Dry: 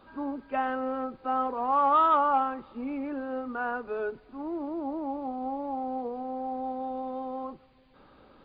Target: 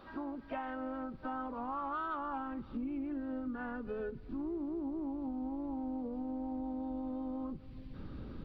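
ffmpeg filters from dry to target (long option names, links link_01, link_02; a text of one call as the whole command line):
ffmpeg -i in.wav -filter_complex "[0:a]asplit=2[link_01][link_02];[link_02]asetrate=52444,aresample=44100,atempo=0.840896,volume=-10dB[link_03];[link_01][link_03]amix=inputs=2:normalize=0,asubboost=boost=9.5:cutoff=230,acompressor=threshold=-40dB:ratio=4,volume=1dB" out.wav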